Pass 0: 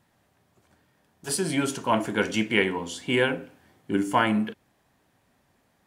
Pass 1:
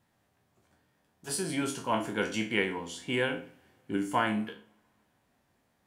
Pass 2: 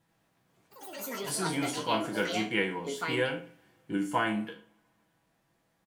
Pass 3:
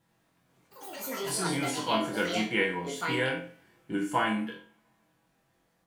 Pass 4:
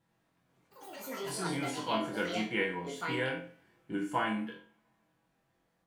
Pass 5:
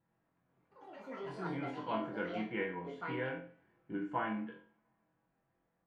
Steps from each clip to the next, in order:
spectral sustain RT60 0.33 s; two-slope reverb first 0.58 s, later 2.3 s, from -19 dB, DRR 17 dB; trim -7 dB
comb 6.1 ms, depth 55%; ever faster or slower copies 89 ms, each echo +6 st, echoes 3, each echo -6 dB; trim -1.5 dB
flutter echo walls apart 3.9 m, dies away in 0.28 s
treble shelf 4.5 kHz -5.5 dB; trim -4 dB
low-pass 1.9 kHz 12 dB/octave; trim -4 dB

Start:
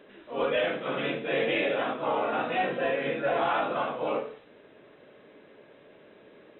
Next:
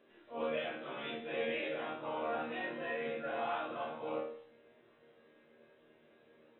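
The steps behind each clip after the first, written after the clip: chord resonator D#2 fifth, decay 0.38 s; trim +1 dB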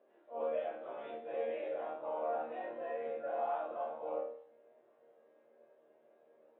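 band-pass filter 640 Hz, Q 2.2; trim +3.5 dB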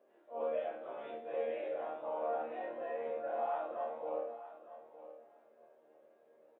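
feedback delay 913 ms, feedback 16%, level -14 dB

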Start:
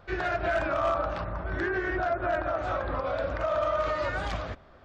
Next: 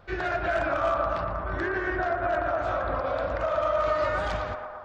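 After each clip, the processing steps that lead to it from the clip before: band-passed feedback delay 116 ms, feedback 79%, band-pass 930 Hz, level -4 dB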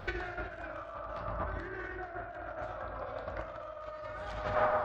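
peak limiter -20 dBFS, peak gain reduction 4.5 dB; compressor with a negative ratio -36 dBFS, ratio -0.5; reverberation RT60 0.95 s, pre-delay 6 ms, DRR 6 dB; trim -1 dB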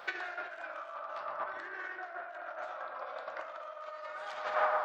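high-pass 730 Hz 12 dB/octave; trim +2 dB

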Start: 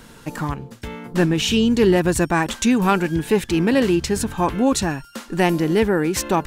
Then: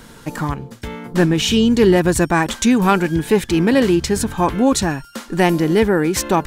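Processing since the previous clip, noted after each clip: band-stop 2.7 kHz, Q 18; trim +3 dB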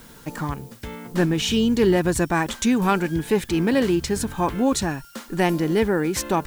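added noise blue -47 dBFS; trim -5.5 dB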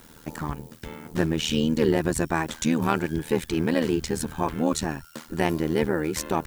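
AM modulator 79 Hz, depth 80%

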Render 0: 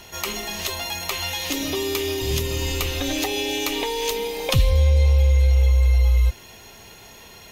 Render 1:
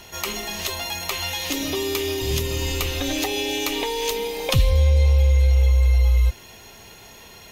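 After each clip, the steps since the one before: no audible change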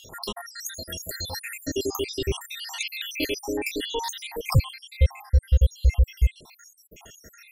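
random holes in the spectrogram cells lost 81%; trim +1.5 dB

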